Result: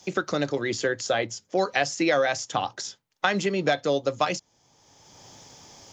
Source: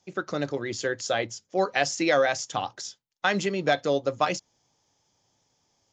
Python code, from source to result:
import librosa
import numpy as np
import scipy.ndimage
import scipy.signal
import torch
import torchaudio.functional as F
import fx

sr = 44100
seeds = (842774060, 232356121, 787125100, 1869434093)

y = fx.band_squash(x, sr, depth_pct=70)
y = F.gain(torch.from_numpy(y), 1.0).numpy()